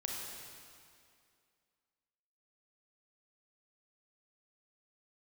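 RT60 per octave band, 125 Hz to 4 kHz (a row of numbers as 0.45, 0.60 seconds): 2.2, 2.4, 2.3, 2.3, 2.2, 2.1 seconds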